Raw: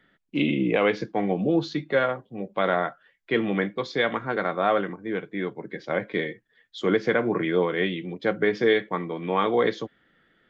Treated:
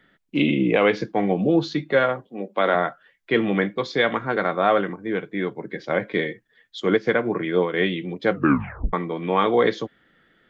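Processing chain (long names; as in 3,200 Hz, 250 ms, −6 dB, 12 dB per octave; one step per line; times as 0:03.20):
0:02.27–0:02.75: high-pass filter 210 Hz 24 dB per octave
0:06.80–0:07.74: expander for the loud parts 1.5 to 1, over −34 dBFS
0:08.31: tape stop 0.62 s
level +3.5 dB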